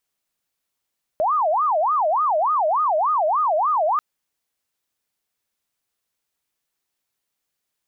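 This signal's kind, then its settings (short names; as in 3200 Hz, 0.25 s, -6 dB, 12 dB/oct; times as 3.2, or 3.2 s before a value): siren wail 607–1250 Hz 3.4/s sine -16.5 dBFS 2.79 s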